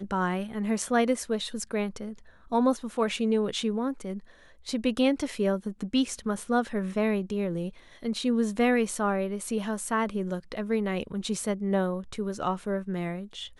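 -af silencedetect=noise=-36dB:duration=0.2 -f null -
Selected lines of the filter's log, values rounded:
silence_start: 2.13
silence_end: 2.52 | silence_duration: 0.39
silence_start: 4.19
silence_end: 4.67 | silence_duration: 0.48
silence_start: 7.69
silence_end: 8.03 | silence_duration: 0.34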